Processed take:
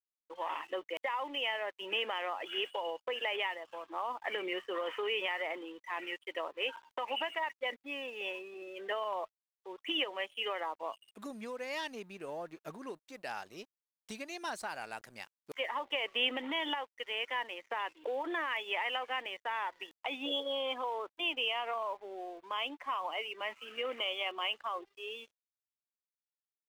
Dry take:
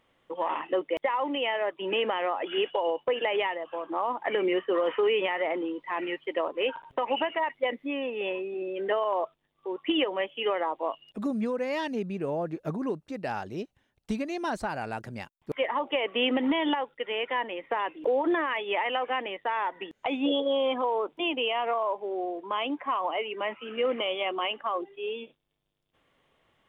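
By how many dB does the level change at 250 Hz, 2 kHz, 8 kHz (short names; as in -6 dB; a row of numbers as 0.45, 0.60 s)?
-15.0 dB, -3.5 dB, n/a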